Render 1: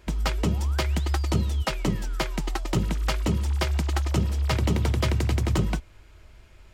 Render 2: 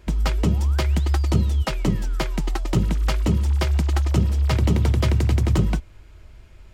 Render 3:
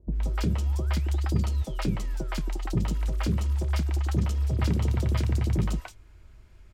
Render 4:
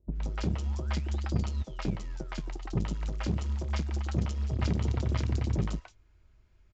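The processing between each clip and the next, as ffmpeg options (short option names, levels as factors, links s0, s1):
-af "lowshelf=f=360:g=5.5"
-filter_complex "[0:a]acrossover=split=600|3100[s0][s1][s2];[s1]adelay=120[s3];[s2]adelay=150[s4];[s0][s3][s4]amix=inputs=3:normalize=0,volume=0.501"
-af "aeval=exprs='0.224*(cos(1*acos(clip(val(0)/0.224,-1,1)))-cos(1*PI/2))+0.0178*(cos(7*acos(clip(val(0)/0.224,-1,1)))-cos(7*PI/2))':c=same,aresample=16000,aresample=44100,volume=0.668"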